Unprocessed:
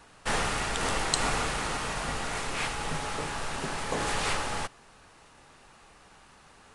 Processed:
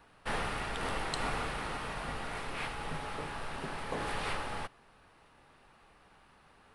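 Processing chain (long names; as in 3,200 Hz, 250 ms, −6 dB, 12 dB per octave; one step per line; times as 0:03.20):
parametric band 6,900 Hz −13 dB 0.92 octaves
level −5.5 dB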